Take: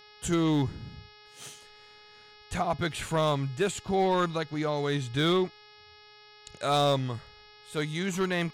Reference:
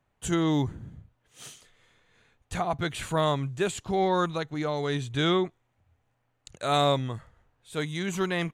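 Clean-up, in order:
clipped peaks rebuilt −18.5 dBFS
hum removal 420.4 Hz, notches 13

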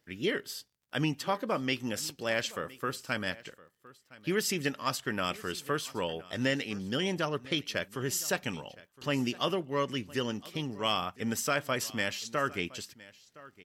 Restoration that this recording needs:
clipped peaks rebuilt −17 dBFS
click removal
echo removal 1,014 ms −20.5 dB

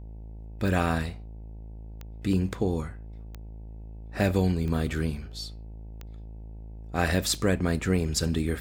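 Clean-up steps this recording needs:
click removal
hum removal 54.2 Hz, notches 17

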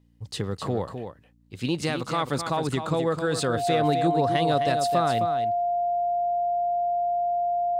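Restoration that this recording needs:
hum removal 58 Hz, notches 5
notch filter 700 Hz, Q 30
echo removal 260 ms −8 dB

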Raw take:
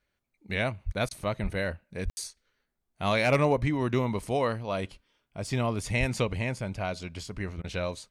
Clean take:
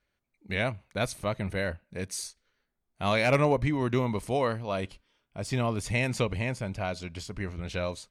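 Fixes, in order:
clipped peaks rebuilt −13.5 dBFS
high-pass at the plosives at 0:00.85/0:01.42/0:02.04/0:05.99
ambience match 0:02.10–0:02.17
repair the gap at 0:01.09/0:07.62, 19 ms

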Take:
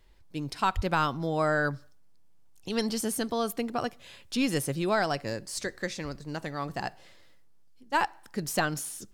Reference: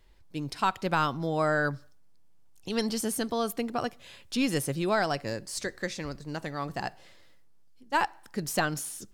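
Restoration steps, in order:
high-pass at the plosives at 0:00.75

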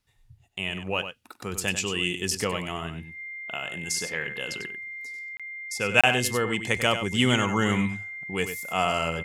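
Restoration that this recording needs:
notch filter 2,100 Hz, Q 30
repair the gap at 0:05.37/0:06.01, 26 ms
echo removal 96 ms −9.5 dB

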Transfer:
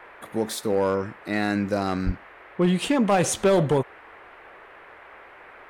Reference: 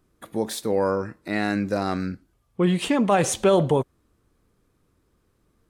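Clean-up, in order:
clipped peaks rebuilt −14 dBFS
high-pass at the plosives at 0:02.05
noise reduction from a noise print 20 dB

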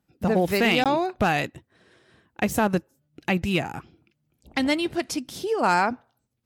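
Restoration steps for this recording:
clipped peaks rebuilt −11.5 dBFS
repair the gap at 0:00.84, 17 ms

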